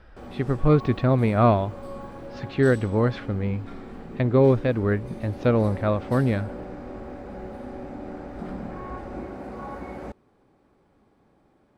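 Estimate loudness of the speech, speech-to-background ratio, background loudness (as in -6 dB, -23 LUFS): -23.0 LUFS, 15.0 dB, -38.0 LUFS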